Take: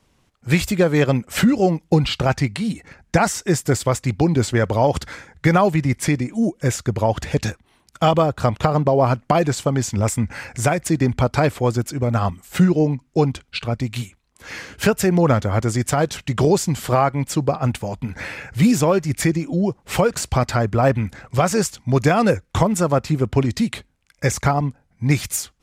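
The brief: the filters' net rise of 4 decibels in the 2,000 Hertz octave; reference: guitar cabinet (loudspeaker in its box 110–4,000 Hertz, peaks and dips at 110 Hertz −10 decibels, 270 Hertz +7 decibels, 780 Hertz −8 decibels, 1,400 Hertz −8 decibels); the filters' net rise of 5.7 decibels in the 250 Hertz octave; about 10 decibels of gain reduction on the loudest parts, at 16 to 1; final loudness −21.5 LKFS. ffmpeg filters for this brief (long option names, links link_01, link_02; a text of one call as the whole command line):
ffmpeg -i in.wav -af "equalizer=frequency=250:width_type=o:gain=4,equalizer=frequency=2000:width_type=o:gain=7.5,acompressor=threshold=-18dB:ratio=16,highpass=110,equalizer=frequency=110:width_type=q:width=4:gain=-10,equalizer=frequency=270:width_type=q:width=4:gain=7,equalizer=frequency=780:width_type=q:width=4:gain=-8,equalizer=frequency=1400:width_type=q:width=4:gain=-8,lowpass=frequency=4000:width=0.5412,lowpass=frequency=4000:width=1.3066,volume=3dB" out.wav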